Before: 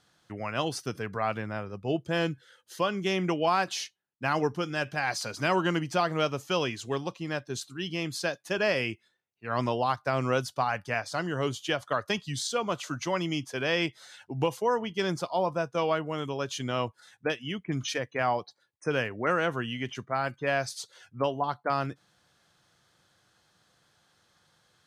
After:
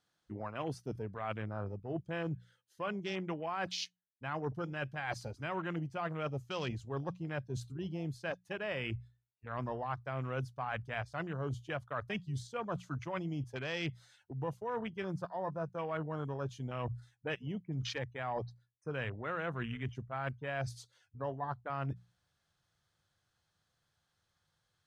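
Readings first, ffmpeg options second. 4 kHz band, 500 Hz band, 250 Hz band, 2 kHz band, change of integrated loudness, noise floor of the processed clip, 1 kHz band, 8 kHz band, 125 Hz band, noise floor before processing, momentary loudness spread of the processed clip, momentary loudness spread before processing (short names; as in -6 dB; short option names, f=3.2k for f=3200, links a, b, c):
-12.0 dB, -10.5 dB, -8.5 dB, -10.0 dB, -9.5 dB, -81 dBFS, -10.5 dB, -15.0 dB, -3.5 dB, -71 dBFS, 4 LU, 8 LU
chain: -af "afwtdn=0.0178,asubboost=boost=4:cutoff=120,bandreject=f=60:t=h:w=6,bandreject=f=120:t=h:w=6,bandreject=f=180:t=h:w=6,areverse,acompressor=threshold=-38dB:ratio=6,areverse,volume=2.5dB"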